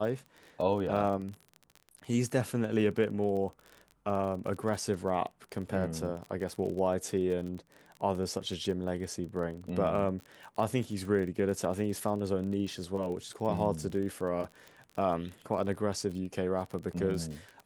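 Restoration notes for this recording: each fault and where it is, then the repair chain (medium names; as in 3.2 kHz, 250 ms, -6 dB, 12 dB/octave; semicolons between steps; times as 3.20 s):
crackle 30 per s -37 dBFS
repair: de-click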